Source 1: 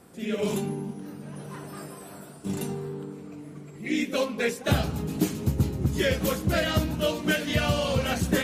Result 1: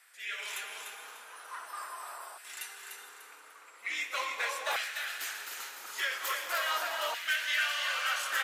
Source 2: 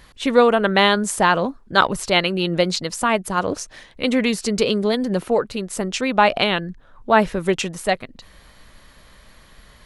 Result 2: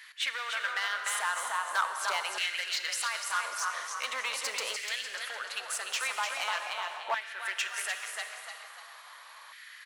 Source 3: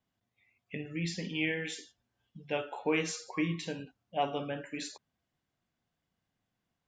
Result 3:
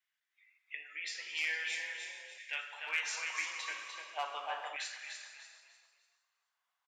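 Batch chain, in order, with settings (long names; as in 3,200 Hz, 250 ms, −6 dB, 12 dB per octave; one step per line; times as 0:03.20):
high-pass filter 470 Hz 12 dB per octave
downward compressor 4 to 1, threshold −27 dBFS
echo with shifted repeats 297 ms, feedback 36%, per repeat +33 Hz, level −6 dB
hard clipping −24.5 dBFS
reverb whose tail is shaped and stops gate 490 ms flat, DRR 6.5 dB
auto-filter high-pass saw down 0.42 Hz 930–1,900 Hz
level −2.5 dB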